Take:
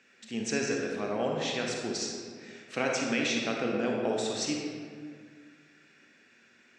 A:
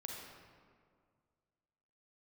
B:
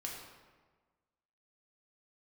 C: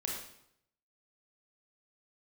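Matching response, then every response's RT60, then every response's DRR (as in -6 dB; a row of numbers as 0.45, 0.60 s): A; 2.0, 1.4, 0.75 s; -1.0, -2.5, -2.0 dB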